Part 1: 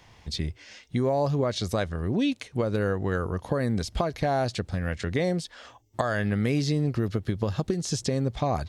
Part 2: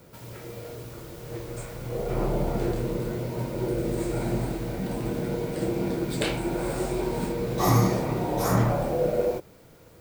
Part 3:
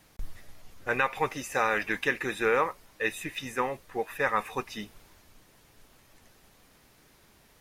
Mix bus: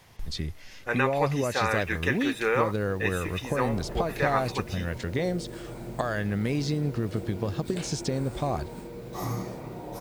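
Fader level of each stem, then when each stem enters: -2.5, -11.5, -0.5 dB; 0.00, 1.55, 0.00 s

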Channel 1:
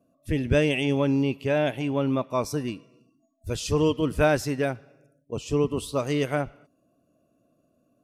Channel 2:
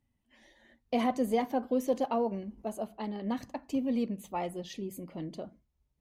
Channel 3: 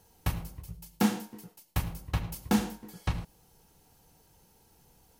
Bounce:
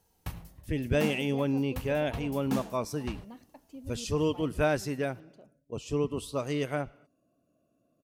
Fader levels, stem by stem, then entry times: -5.5, -15.0, -8.0 dB; 0.40, 0.00, 0.00 s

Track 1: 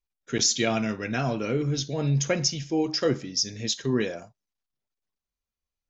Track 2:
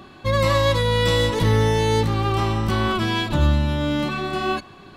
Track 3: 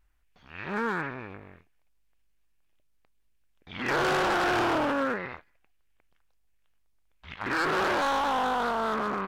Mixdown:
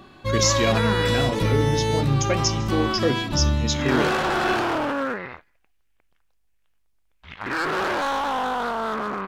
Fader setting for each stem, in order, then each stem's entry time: +1.0, -3.5, +2.0 dB; 0.00, 0.00, 0.00 s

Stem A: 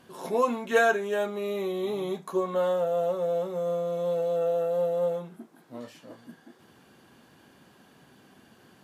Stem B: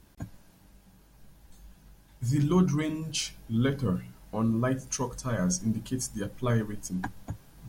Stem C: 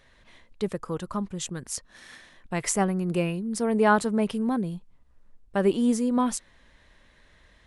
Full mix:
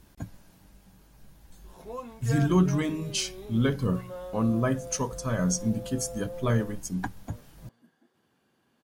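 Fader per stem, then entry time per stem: -14.0 dB, +1.5 dB, off; 1.55 s, 0.00 s, off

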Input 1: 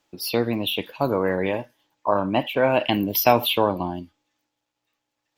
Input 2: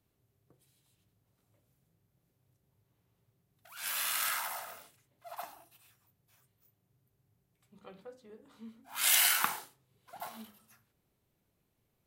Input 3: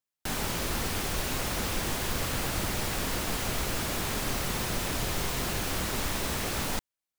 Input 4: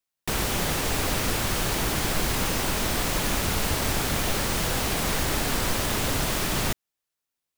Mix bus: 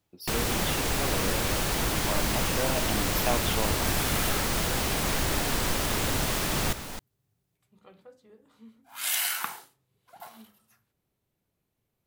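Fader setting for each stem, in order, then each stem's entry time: -12.5, -2.0, -7.5, -2.0 dB; 0.00, 0.00, 0.20, 0.00 s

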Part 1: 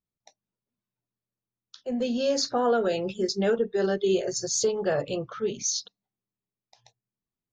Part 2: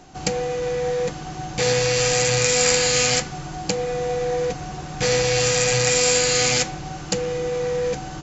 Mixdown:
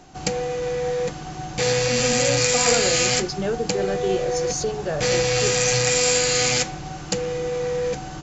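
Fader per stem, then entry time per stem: -1.0, -1.0 dB; 0.00, 0.00 s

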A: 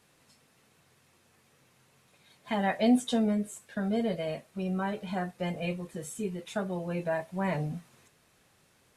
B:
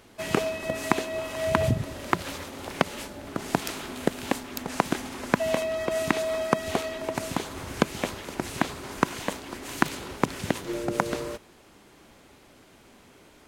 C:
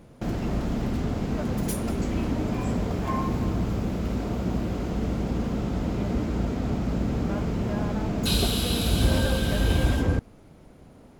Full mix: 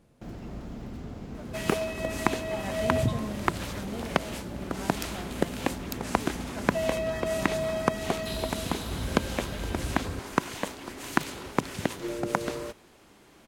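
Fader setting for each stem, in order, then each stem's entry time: -10.0, -2.0, -12.0 dB; 0.00, 1.35, 0.00 s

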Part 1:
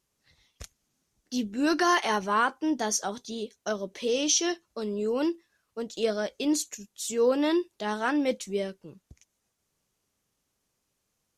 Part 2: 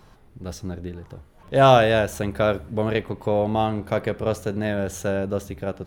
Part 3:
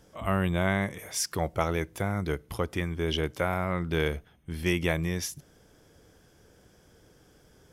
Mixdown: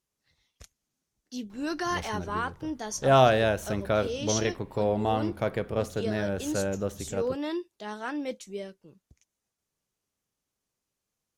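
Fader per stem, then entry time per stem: -7.0 dB, -5.0 dB, off; 0.00 s, 1.50 s, off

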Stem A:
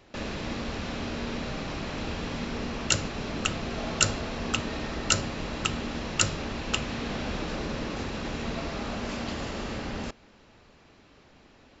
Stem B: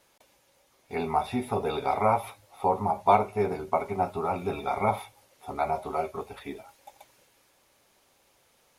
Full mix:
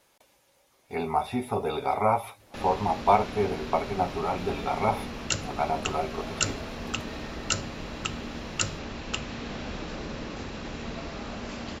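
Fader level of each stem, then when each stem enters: -3.5, 0.0 dB; 2.40, 0.00 s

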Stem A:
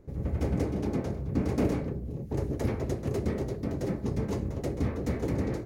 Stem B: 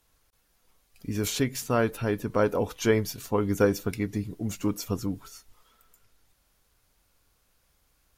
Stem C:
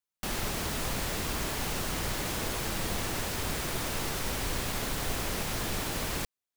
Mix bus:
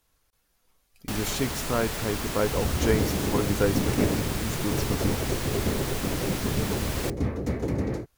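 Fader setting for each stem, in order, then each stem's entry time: +2.0, -2.0, +0.5 dB; 2.40, 0.00, 0.85 s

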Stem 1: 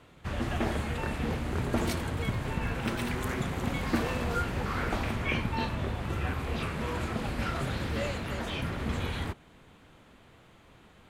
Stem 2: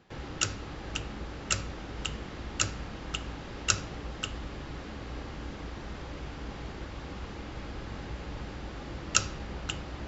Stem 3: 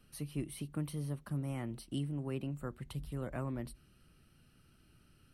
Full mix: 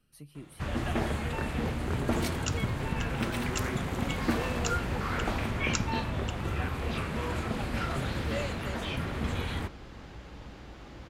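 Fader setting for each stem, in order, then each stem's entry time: 0.0, -7.0, -7.0 dB; 0.35, 2.05, 0.00 s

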